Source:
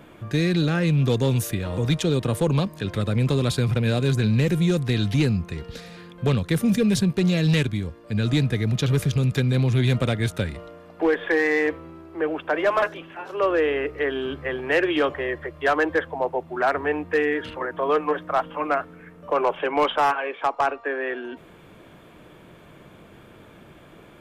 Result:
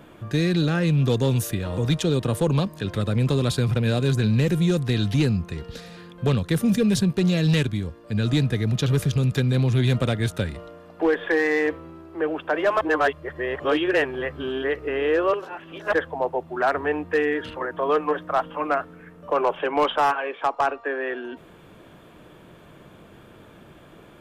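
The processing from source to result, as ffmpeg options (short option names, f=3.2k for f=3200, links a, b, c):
-filter_complex "[0:a]asplit=3[a][b][c];[a]atrim=end=12.812[d];[b]atrim=start=12.808:end=15.932,asetpts=PTS-STARTPTS,areverse[e];[c]atrim=start=15.928[f];[d][e]acrossfade=d=0.004:c1=hsin:c2=hsin[g];[g][f]acrossfade=d=0.004:c1=hsin:c2=hsin,equalizer=f=2.2k:t=o:w=0.26:g=-4"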